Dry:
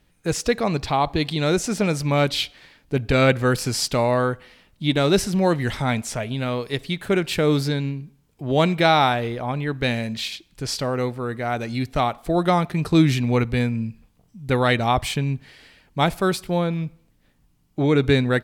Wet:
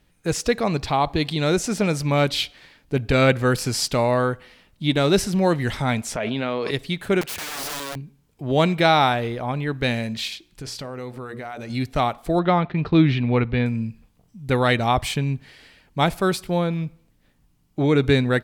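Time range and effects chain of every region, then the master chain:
0:06.16–0:06.71: band-pass filter 230–3,700 Hz + envelope flattener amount 100%
0:07.21–0:07.96: tube saturation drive 14 dB, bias 0.3 + wrap-around overflow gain 25.5 dB + low-shelf EQ 210 Hz −9 dB
0:10.33–0:11.70: mains-hum notches 60/120/180/240/300/360/420/480/540/600 Hz + downward compressor 5 to 1, threshold −30 dBFS
0:12.39–0:13.66: low-pass filter 3,700 Hz 24 dB per octave + downward expander −35 dBFS
whole clip: no processing

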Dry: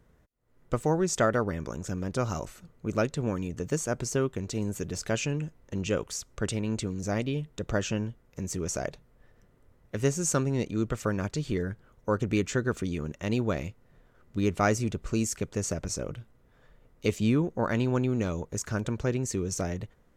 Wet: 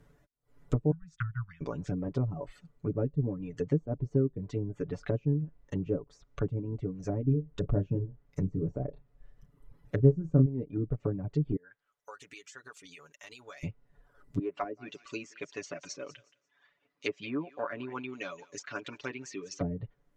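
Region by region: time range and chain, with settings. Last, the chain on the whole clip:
0:00.91–0:01.61: downward expander −26 dBFS + elliptic band-stop filter 140–1,400 Hz, stop band 60 dB
0:07.24–0:10.46: low-shelf EQ 200 Hz +5 dB + double-tracking delay 31 ms −8 dB
0:11.56–0:13.63: first-order pre-emphasis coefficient 0.97 + downward compressor 5 to 1, threshold −49 dBFS + mid-hump overdrive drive 16 dB, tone 1,500 Hz, clips at −23.5 dBFS
0:14.39–0:19.61: loudspeaker in its box 460–6,700 Hz, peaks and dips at 470 Hz −9 dB, 810 Hz −9 dB, 1,300 Hz −4 dB, 2,600 Hz +4 dB + notch filter 620 Hz, Q 20 + feedback echo with a high-pass in the loop 174 ms, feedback 23%, high-pass 640 Hz, level −11.5 dB
whole clip: reverb reduction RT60 1.2 s; treble cut that deepens with the level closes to 370 Hz, closed at −28 dBFS; comb filter 7 ms, depth 76%

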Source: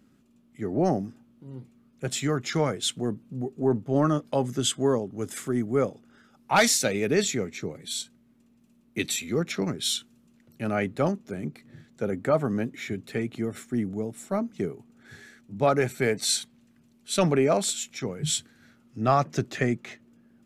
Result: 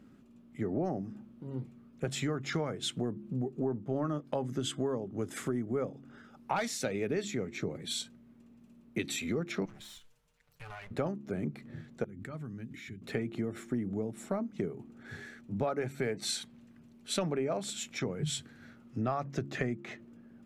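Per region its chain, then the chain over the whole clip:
0:09.65–0:10.91: lower of the sound and its delayed copy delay 6.8 ms + guitar amp tone stack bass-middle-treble 10-0-10 + downward compressor 10 to 1, threshold −44 dBFS
0:12.04–0:13.02: guitar amp tone stack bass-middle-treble 6-0-2 + background raised ahead of every attack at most 25 dB per second
whole clip: high-shelf EQ 3,400 Hz −10.5 dB; hum removal 69.15 Hz, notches 5; downward compressor 5 to 1, threshold −35 dBFS; level +4 dB

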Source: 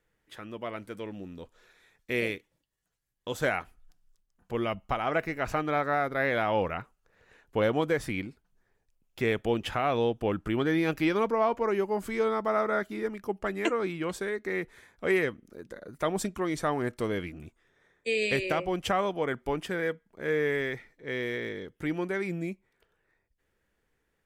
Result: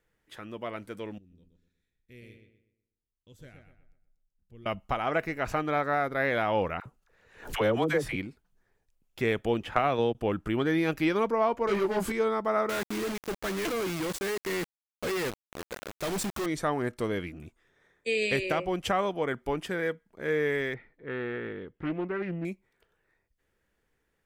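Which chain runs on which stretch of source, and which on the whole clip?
0:01.18–0:04.66: guitar amp tone stack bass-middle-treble 10-0-1 + feedback echo with a low-pass in the loop 123 ms, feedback 38%, low-pass 3,400 Hz, level −6 dB
0:06.80–0:08.16: all-pass dispersion lows, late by 56 ms, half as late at 660 Hz + background raised ahead of every attack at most 120 dB per second
0:09.64–0:10.15: noise gate −29 dBFS, range −31 dB + multiband upward and downward compressor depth 100%
0:11.67–0:12.12: leveller curve on the samples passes 3 + micro pitch shift up and down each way 13 cents
0:12.69–0:16.46: log-companded quantiser 2 bits + hard clipping −29 dBFS
0:20.74–0:22.45: high-frequency loss of the air 390 metres + highs frequency-modulated by the lows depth 0.34 ms
whole clip: no processing

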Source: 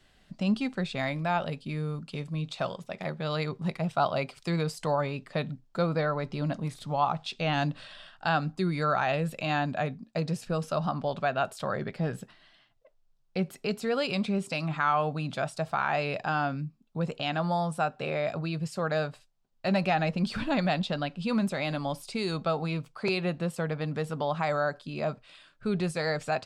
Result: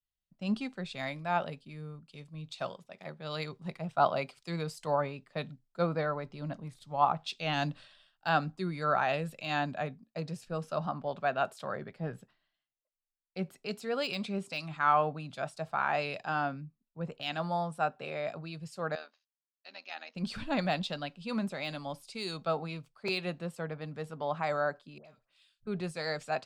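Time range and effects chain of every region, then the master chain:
0:18.95–0:20.15: amplitude modulation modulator 80 Hz, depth 55% + linear-phase brick-wall band-pass 210–6,800 Hz + parametric band 320 Hz −13 dB 2.6 octaves
0:24.98–0:25.67: downward compressor 12 to 1, threshold −39 dBFS + leveller curve on the samples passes 1 + all-pass dispersion highs, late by 70 ms, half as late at 1,200 Hz
whole clip: de-essing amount 85%; low-shelf EQ 170 Hz −5 dB; multiband upward and downward expander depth 100%; level −4 dB

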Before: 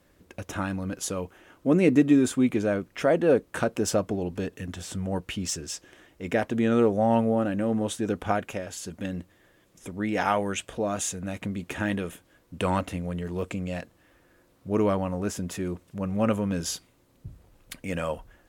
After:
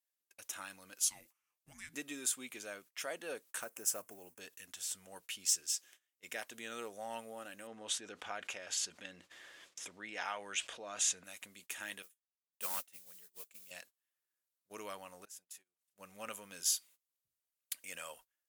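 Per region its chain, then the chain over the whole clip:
0:01.04–0:01.94: low-shelf EQ 120 Hz −11 dB + downward compressor 5 to 1, threshold −24 dBFS + frequency shifter −420 Hz
0:03.60–0:04.41: one scale factor per block 7 bits + parametric band 3,900 Hz −13.5 dB 0.98 octaves
0:07.67–0:11.24: low-pass filter 6,500 Hz + high-shelf EQ 4,900 Hz −10 dB + envelope flattener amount 50%
0:12.02–0:13.71: noise that follows the level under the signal 17 dB + expander for the loud parts 2.5 to 1, over −37 dBFS
0:15.25–0:15.96: low-shelf EQ 410 Hz −5 dB + downward compressor 12 to 1, threshold −46 dBFS + saturating transformer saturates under 440 Hz
whole clip: first-order pre-emphasis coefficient 0.97; noise gate −58 dBFS, range −21 dB; low-shelf EQ 200 Hz −11.5 dB; level +1 dB

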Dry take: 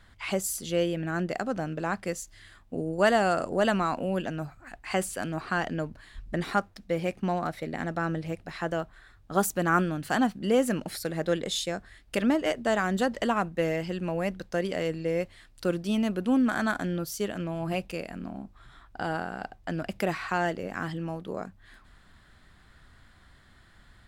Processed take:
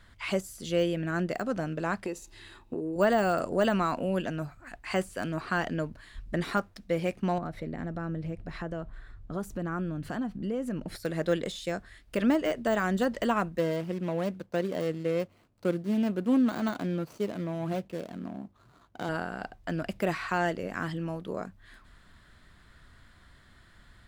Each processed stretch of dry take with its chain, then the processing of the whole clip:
0:02.05–0:02.96: hollow resonant body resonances 370/870/2,600/3,800 Hz, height 14 dB, ringing for 25 ms + downward compressor, threshold −30 dBFS
0:07.38–0:10.96: spectral tilt −2.5 dB per octave + downward compressor 2.5 to 1, threshold −34 dBFS
0:13.58–0:19.09: running median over 25 samples + high-pass filter 110 Hz
whole clip: de-essing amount 95%; notch filter 790 Hz, Q 12

